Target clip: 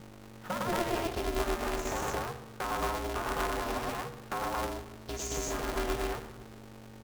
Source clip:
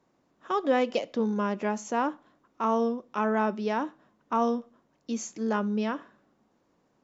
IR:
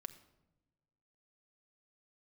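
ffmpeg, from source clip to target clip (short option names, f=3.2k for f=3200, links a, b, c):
-filter_complex "[0:a]asettb=1/sr,asplit=3[a][b][c];[a]atrim=end=3.224[d];[b]atrim=start=3.22:end=5.32,asetpts=PTS-STARTPTS,afade=t=in:d=0.004:c=qsin,afade=t=out:st=2.096:d=0.004:c=qsin,highpass=330[e];[c]atrim=start=5.316[f];[d][e]acrossfade=d=0.004:c1=hsin:c2=qsin[g];[g][f]acrossfade=d=0.004:c1=qsin:c2=hsin,acompressor=threshold=-38dB:ratio=4,aecho=1:1:105|224.5:0.891|1,acontrast=42,aeval=exprs='val(0)+0.00562*(sin(2*PI*50*n/s)+sin(2*PI*2*50*n/s)/2+sin(2*PI*3*50*n/s)/3+sin(2*PI*4*50*n/s)/4+sin(2*PI*5*50*n/s)/5)':c=same,acrusher=bits=3:mode=log:mix=0:aa=0.000001[h];[1:a]atrim=start_sample=2205,asetrate=40131,aresample=44100[i];[h][i]afir=irnorm=-1:irlink=0,aeval=exprs='val(0)*sgn(sin(2*PI*170*n/s))':c=same,volume=1dB"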